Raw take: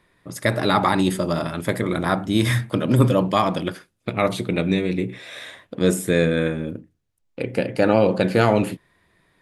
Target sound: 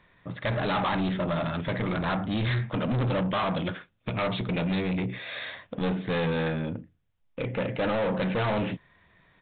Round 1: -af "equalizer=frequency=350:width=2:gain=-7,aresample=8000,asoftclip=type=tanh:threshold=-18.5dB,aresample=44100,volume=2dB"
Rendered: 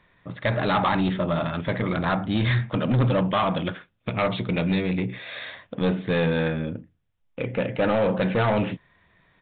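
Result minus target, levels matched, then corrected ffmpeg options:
soft clipping: distortion −5 dB
-af "equalizer=frequency=350:width=2:gain=-7,aresample=8000,asoftclip=type=tanh:threshold=-26dB,aresample=44100,volume=2dB"

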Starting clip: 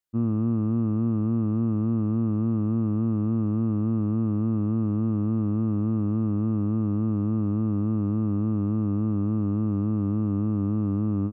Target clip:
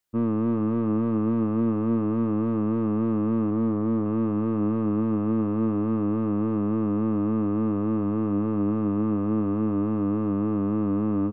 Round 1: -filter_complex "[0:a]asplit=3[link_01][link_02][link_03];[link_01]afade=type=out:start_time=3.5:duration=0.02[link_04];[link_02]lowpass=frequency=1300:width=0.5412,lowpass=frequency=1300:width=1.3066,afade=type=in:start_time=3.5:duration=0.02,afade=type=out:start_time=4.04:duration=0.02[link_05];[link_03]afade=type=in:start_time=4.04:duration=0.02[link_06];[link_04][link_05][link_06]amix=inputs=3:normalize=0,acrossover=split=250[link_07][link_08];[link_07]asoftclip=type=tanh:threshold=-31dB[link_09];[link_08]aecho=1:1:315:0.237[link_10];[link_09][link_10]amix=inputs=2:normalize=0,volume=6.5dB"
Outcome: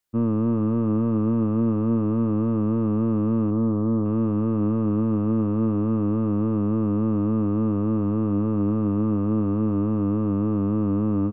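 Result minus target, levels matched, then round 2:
soft clipping: distortion −4 dB
-filter_complex "[0:a]asplit=3[link_01][link_02][link_03];[link_01]afade=type=out:start_time=3.5:duration=0.02[link_04];[link_02]lowpass=frequency=1300:width=0.5412,lowpass=frequency=1300:width=1.3066,afade=type=in:start_time=3.5:duration=0.02,afade=type=out:start_time=4.04:duration=0.02[link_05];[link_03]afade=type=in:start_time=4.04:duration=0.02[link_06];[link_04][link_05][link_06]amix=inputs=3:normalize=0,acrossover=split=250[link_07][link_08];[link_07]asoftclip=type=tanh:threshold=-38dB[link_09];[link_08]aecho=1:1:315:0.237[link_10];[link_09][link_10]amix=inputs=2:normalize=0,volume=6.5dB"

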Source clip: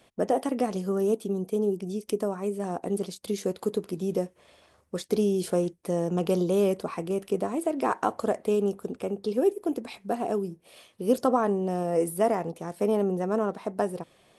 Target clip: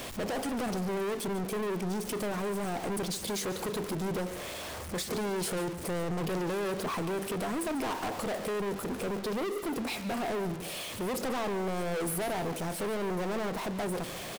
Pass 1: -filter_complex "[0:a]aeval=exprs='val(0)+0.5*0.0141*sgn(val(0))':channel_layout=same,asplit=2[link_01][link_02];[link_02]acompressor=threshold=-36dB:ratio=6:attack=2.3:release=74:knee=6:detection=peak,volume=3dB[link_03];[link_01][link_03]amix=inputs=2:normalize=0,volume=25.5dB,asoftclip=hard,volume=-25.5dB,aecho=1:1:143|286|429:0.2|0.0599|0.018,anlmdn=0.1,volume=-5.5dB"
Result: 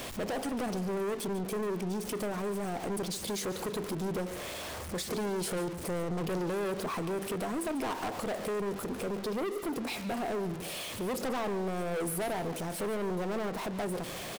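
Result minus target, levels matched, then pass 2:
downward compressor: peak gain reduction +9.5 dB
-filter_complex "[0:a]aeval=exprs='val(0)+0.5*0.0141*sgn(val(0))':channel_layout=same,asplit=2[link_01][link_02];[link_02]acompressor=threshold=-24.5dB:ratio=6:attack=2.3:release=74:knee=6:detection=peak,volume=3dB[link_03];[link_01][link_03]amix=inputs=2:normalize=0,volume=25.5dB,asoftclip=hard,volume=-25.5dB,aecho=1:1:143|286|429:0.2|0.0599|0.018,anlmdn=0.1,volume=-5.5dB"

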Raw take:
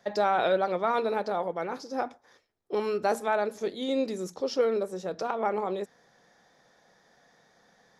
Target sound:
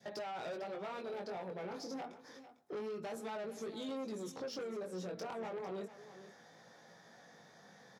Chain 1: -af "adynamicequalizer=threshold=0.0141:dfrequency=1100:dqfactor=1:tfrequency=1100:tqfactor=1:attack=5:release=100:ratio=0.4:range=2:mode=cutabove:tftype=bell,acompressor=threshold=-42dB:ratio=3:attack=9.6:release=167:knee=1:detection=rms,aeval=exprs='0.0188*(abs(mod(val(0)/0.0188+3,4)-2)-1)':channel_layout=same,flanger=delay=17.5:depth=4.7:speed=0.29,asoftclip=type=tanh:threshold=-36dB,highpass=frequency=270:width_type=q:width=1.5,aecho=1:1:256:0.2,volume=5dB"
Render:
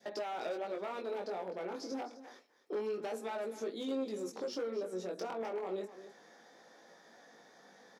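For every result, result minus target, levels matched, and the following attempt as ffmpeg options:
echo 194 ms early; 125 Hz band −8.0 dB; soft clipping: distortion −10 dB
-af "adynamicequalizer=threshold=0.0141:dfrequency=1100:dqfactor=1:tfrequency=1100:tqfactor=1:attack=5:release=100:ratio=0.4:range=2:mode=cutabove:tftype=bell,acompressor=threshold=-42dB:ratio=3:attack=9.6:release=167:knee=1:detection=rms,aeval=exprs='0.0188*(abs(mod(val(0)/0.0188+3,4)-2)-1)':channel_layout=same,flanger=delay=17.5:depth=4.7:speed=0.29,asoftclip=type=tanh:threshold=-36dB,highpass=frequency=270:width_type=q:width=1.5,aecho=1:1:450:0.2,volume=5dB"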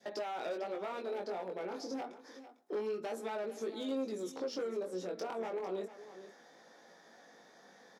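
125 Hz band −8.0 dB; soft clipping: distortion −10 dB
-af "adynamicequalizer=threshold=0.0141:dfrequency=1100:dqfactor=1:tfrequency=1100:tqfactor=1:attack=5:release=100:ratio=0.4:range=2:mode=cutabove:tftype=bell,acompressor=threshold=-42dB:ratio=3:attack=9.6:release=167:knee=1:detection=rms,aeval=exprs='0.0188*(abs(mod(val(0)/0.0188+3,4)-2)-1)':channel_layout=same,flanger=delay=17.5:depth=4.7:speed=0.29,asoftclip=type=tanh:threshold=-36dB,highpass=frequency=130:width_type=q:width=1.5,aecho=1:1:450:0.2,volume=5dB"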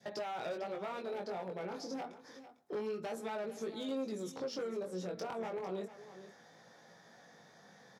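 soft clipping: distortion −10 dB
-af "adynamicequalizer=threshold=0.0141:dfrequency=1100:dqfactor=1:tfrequency=1100:tqfactor=1:attack=5:release=100:ratio=0.4:range=2:mode=cutabove:tftype=bell,acompressor=threshold=-42dB:ratio=3:attack=9.6:release=167:knee=1:detection=rms,aeval=exprs='0.0188*(abs(mod(val(0)/0.0188+3,4)-2)-1)':channel_layout=same,flanger=delay=17.5:depth=4.7:speed=0.29,asoftclip=type=tanh:threshold=-43.5dB,highpass=frequency=130:width_type=q:width=1.5,aecho=1:1:450:0.2,volume=5dB"

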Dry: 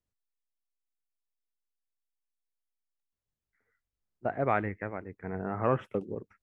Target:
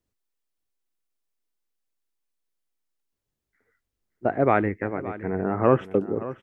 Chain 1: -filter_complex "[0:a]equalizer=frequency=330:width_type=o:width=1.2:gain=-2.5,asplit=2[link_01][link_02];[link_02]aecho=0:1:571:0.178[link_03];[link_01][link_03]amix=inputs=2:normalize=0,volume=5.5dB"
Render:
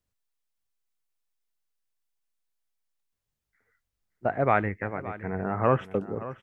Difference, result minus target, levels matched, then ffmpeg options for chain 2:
250 Hz band −2.5 dB
-filter_complex "[0:a]equalizer=frequency=330:width_type=o:width=1.2:gain=6.5,asplit=2[link_01][link_02];[link_02]aecho=0:1:571:0.178[link_03];[link_01][link_03]amix=inputs=2:normalize=0,volume=5.5dB"

